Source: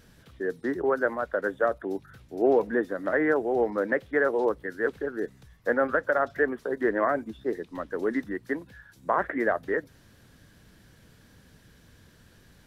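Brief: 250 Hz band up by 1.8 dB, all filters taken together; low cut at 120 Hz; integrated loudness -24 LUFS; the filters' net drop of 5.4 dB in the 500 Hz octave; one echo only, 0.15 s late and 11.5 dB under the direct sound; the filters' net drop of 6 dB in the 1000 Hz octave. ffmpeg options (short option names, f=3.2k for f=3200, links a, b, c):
-af "highpass=120,equalizer=f=250:t=o:g=5.5,equalizer=f=500:t=o:g=-7,equalizer=f=1k:t=o:g=-6.5,aecho=1:1:150:0.266,volume=6.5dB"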